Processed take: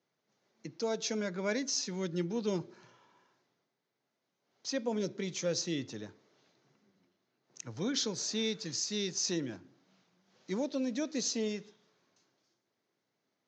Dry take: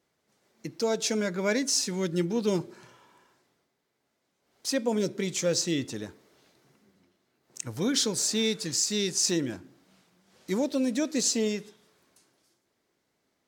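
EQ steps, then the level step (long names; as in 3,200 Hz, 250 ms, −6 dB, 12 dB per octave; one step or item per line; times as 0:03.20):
Chebyshev band-pass filter 100–6,500 Hz, order 5
−6.0 dB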